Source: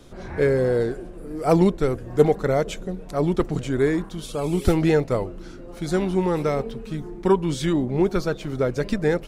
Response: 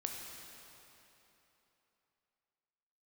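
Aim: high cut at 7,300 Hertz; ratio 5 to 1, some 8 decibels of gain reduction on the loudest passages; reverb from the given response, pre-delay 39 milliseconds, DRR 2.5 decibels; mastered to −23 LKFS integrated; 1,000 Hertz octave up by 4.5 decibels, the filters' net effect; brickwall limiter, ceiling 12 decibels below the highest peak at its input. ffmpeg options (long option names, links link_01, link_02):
-filter_complex "[0:a]lowpass=7300,equalizer=frequency=1000:width_type=o:gain=6,acompressor=threshold=-19dB:ratio=5,alimiter=limit=-21dB:level=0:latency=1,asplit=2[link_01][link_02];[1:a]atrim=start_sample=2205,adelay=39[link_03];[link_02][link_03]afir=irnorm=-1:irlink=0,volume=-3dB[link_04];[link_01][link_04]amix=inputs=2:normalize=0,volume=6dB"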